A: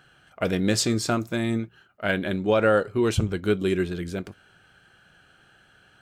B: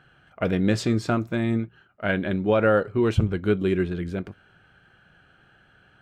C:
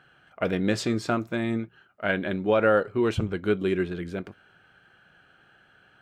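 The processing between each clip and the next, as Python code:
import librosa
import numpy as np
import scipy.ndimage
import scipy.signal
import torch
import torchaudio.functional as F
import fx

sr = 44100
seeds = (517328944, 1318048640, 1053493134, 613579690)

y1 = fx.bass_treble(x, sr, bass_db=3, treble_db=-13)
y2 = fx.low_shelf(y1, sr, hz=160.0, db=-10.5)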